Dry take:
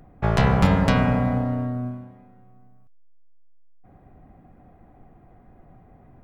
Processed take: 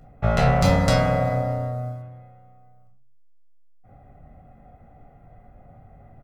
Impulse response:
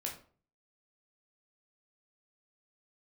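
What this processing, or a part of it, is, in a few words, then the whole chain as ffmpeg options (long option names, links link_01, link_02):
microphone above a desk: -filter_complex "[0:a]aecho=1:1:1.5:0.51[link_01];[1:a]atrim=start_sample=2205[link_02];[link_01][link_02]afir=irnorm=-1:irlink=0,asettb=1/sr,asplit=3[link_03][link_04][link_05];[link_03]atrim=end=0.614[link_06];[link_04]atrim=start=0.61:end=2.02,asetpts=PTS-STARTPTS,afade=type=in:duration=0.004:curve=qsin,afade=type=out:start_time=1.406:duration=0.004:curve=qsin,highshelf=frequency=3800:width_type=q:width=1.5:gain=7.5[link_07];[link_05]atrim=start=2.016[link_08];[link_06][link_07]acrossfade=duration=0.004:curve1=hsin:curve2=qsin[link_09];[link_09][link_08]acrossfade=duration=0.004:curve1=qsin:curve2=hsin"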